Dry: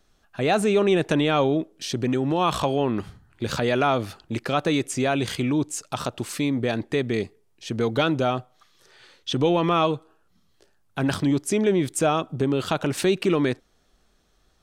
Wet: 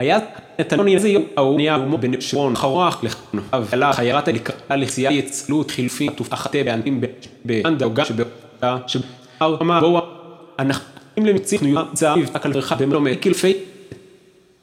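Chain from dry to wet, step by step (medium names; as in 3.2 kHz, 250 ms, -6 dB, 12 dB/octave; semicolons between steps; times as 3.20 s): slices played last to first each 196 ms, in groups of 3; high-pass 99 Hz; two-slope reverb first 0.44 s, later 2.8 s, from -18 dB, DRR 9 dB; trim +5 dB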